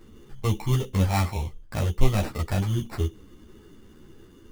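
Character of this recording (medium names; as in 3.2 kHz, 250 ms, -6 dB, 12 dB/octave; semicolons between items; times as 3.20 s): aliases and images of a low sample rate 3.2 kHz, jitter 0%; a shimmering, thickened sound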